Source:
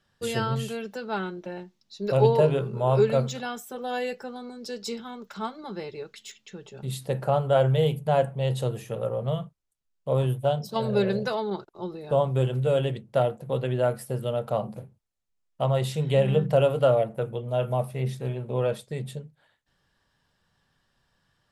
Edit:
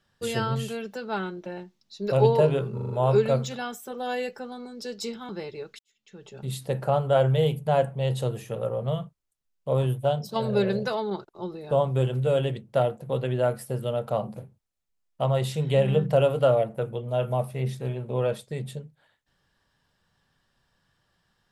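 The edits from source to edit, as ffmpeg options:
ffmpeg -i in.wav -filter_complex "[0:a]asplit=7[link_01][link_02][link_03][link_04][link_05][link_06][link_07];[link_01]atrim=end=2.782[link_08];[link_02]atrim=start=2.738:end=2.782[link_09];[link_03]atrim=start=2.738:end=2.782[link_10];[link_04]atrim=start=2.738:end=2.782[link_11];[link_05]atrim=start=2.738:end=5.132[link_12];[link_06]atrim=start=5.688:end=6.19,asetpts=PTS-STARTPTS,afade=type=out:start_time=0.498:duration=0.004:curve=hsin[link_13];[link_07]atrim=start=6.19,asetpts=PTS-STARTPTS,afade=type=in:duration=0.49:curve=qua[link_14];[link_08][link_09]acrossfade=duration=0.004:curve1=hsin:curve2=hsin[link_15];[link_15][link_10]acrossfade=duration=0.004:curve1=hsin:curve2=hsin[link_16];[link_16][link_11]acrossfade=duration=0.004:curve1=hsin:curve2=hsin[link_17];[link_17][link_12]acrossfade=duration=0.004:curve1=hsin:curve2=hsin[link_18];[link_13][link_14]concat=n=2:v=0:a=1[link_19];[link_18][link_19]acrossfade=duration=0.004:curve1=hsin:curve2=hsin" out.wav

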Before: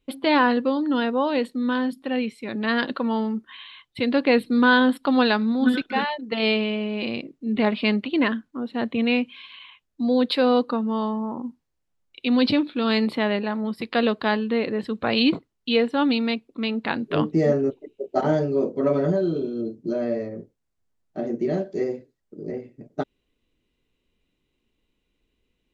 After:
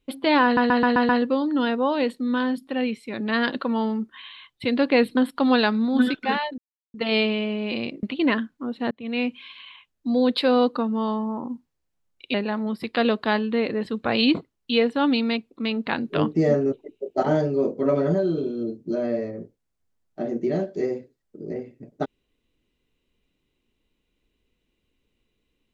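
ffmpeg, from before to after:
ffmpeg -i in.wav -filter_complex "[0:a]asplit=11[link_01][link_02][link_03][link_04][link_05][link_06][link_07][link_08][link_09][link_10][link_11];[link_01]atrim=end=0.572[link_12];[link_02]atrim=start=0.438:end=0.572[link_13];[link_03]atrim=start=0.438:end=0.572[link_14];[link_04]atrim=start=0.438:end=0.572[link_15];[link_05]atrim=start=0.438:end=0.572[link_16];[link_06]atrim=start=0.438:end=4.522[link_17];[link_07]atrim=start=4.838:end=6.25,asetpts=PTS-STARTPTS,afade=type=out:start_time=1.408:duration=0.004:curve=hsin,apad=pad_dur=0.36[link_18];[link_08]atrim=start=6.25:end=7.342,asetpts=PTS-STARTPTS,afade=type=in:duration=0.004:curve=hsin[link_19];[link_09]atrim=start=7.968:end=8.85,asetpts=PTS-STARTPTS,afade=type=out:start_time=0.878:duration=0.004:curve=hsin[link_20];[link_10]atrim=start=8.85:end=12.282,asetpts=PTS-STARTPTS,afade=type=in:duration=0.44[link_21];[link_11]atrim=start=13.318[link_22];[link_12][link_13]acrossfade=duration=0.004:curve1=hsin:curve2=hsin[link_23];[link_23][link_14]acrossfade=duration=0.004:curve1=hsin:curve2=hsin[link_24];[link_24][link_15]acrossfade=duration=0.004:curve1=hsin:curve2=hsin[link_25];[link_25][link_16]acrossfade=duration=0.004:curve1=hsin:curve2=hsin[link_26];[link_26][link_17]acrossfade=duration=0.004:curve1=hsin:curve2=hsin[link_27];[link_18][link_19]concat=n=2:v=0:a=1[link_28];[link_27][link_28]acrossfade=duration=0.004:curve1=hsin:curve2=hsin[link_29];[link_20][link_21]concat=n=2:v=0:a=1[link_30];[link_29][link_30]acrossfade=duration=0.004:curve1=hsin:curve2=hsin[link_31];[link_31][link_22]acrossfade=duration=0.004:curve1=hsin:curve2=hsin" out.wav

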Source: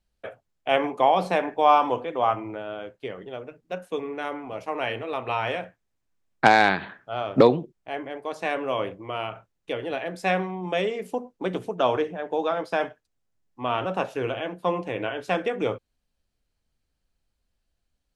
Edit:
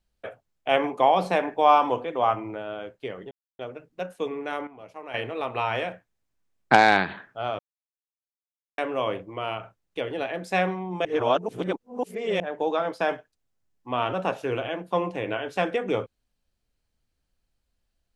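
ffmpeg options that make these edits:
ffmpeg -i in.wav -filter_complex "[0:a]asplit=8[link_01][link_02][link_03][link_04][link_05][link_06][link_07][link_08];[link_01]atrim=end=3.31,asetpts=PTS-STARTPTS,afade=type=out:start_time=3.306:duration=0.004:curve=hsin,apad=pad_dur=0.28[link_09];[link_02]atrim=start=3.31:end=4.392,asetpts=PTS-STARTPTS,afade=type=in:duration=0.004:curve=hsin[link_10];[link_03]atrim=start=4.388:end=4.862,asetpts=PTS-STARTPTS,volume=-10.5dB[link_11];[link_04]atrim=start=4.858:end=7.31,asetpts=PTS-STARTPTS,afade=type=out:start_time=2.448:duration=0.004:curve=hsin[link_12];[link_05]atrim=start=7.31:end=8.5,asetpts=PTS-STARTPTS,volume=0[link_13];[link_06]atrim=start=8.5:end=10.772,asetpts=PTS-STARTPTS,afade=type=in:duration=0.004:curve=hsin[link_14];[link_07]atrim=start=10.768:end=12.122,asetpts=PTS-STARTPTS,areverse[link_15];[link_08]atrim=start=12.118[link_16];[link_09][link_10]concat=n=2:v=0:a=1[link_17];[link_17][link_11]acrossfade=duration=0.004:curve1=hsin:curve2=hsin[link_18];[link_12][link_13][link_14]concat=n=3:v=0:a=1[link_19];[link_18][link_19]acrossfade=duration=0.004:curve1=hsin:curve2=hsin[link_20];[link_20][link_15]acrossfade=duration=0.004:curve1=hsin:curve2=hsin[link_21];[link_21][link_16]acrossfade=duration=0.004:curve1=hsin:curve2=hsin" out.wav

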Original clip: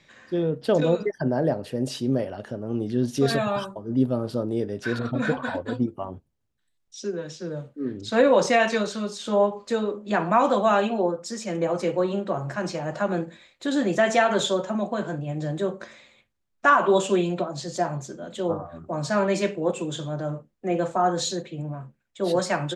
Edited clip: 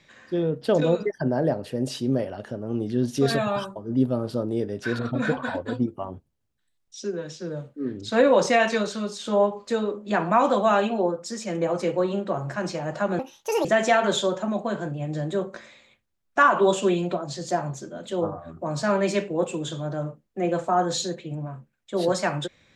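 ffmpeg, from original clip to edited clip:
ffmpeg -i in.wav -filter_complex "[0:a]asplit=3[link_01][link_02][link_03];[link_01]atrim=end=13.194[link_04];[link_02]atrim=start=13.19:end=13.92,asetpts=PTS-STARTPTS,asetrate=70119,aresample=44100,atrim=end_sample=20247,asetpts=PTS-STARTPTS[link_05];[link_03]atrim=start=13.916[link_06];[link_04][link_05]acrossfade=duration=0.004:curve1=hsin:curve2=hsin[link_07];[link_07][link_06]acrossfade=duration=0.004:curve1=hsin:curve2=hsin" out.wav

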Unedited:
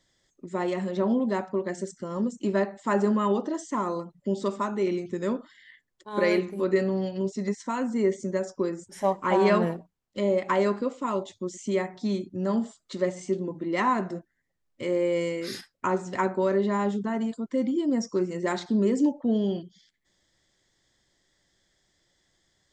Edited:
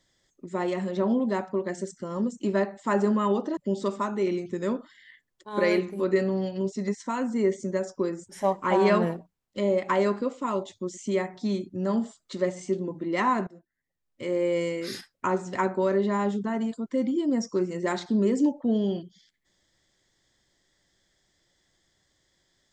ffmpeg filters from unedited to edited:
ffmpeg -i in.wav -filter_complex "[0:a]asplit=3[link_01][link_02][link_03];[link_01]atrim=end=3.572[link_04];[link_02]atrim=start=4.168:end=14.07,asetpts=PTS-STARTPTS,afade=type=out:start_time=9.898:duration=0.004:curve=hsin:silence=0.1[link_05];[link_03]atrim=start=14.07,asetpts=PTS-STARTPTS,afade=type=in:duration=1.01:silence=0.1[link_06];[link_05][link_06]concat=n=2:v=0:a=1[link_07];[link_04][link_07]acrossfade=duration=0.004:curve1=hsin:curve2=hsin" out.wav

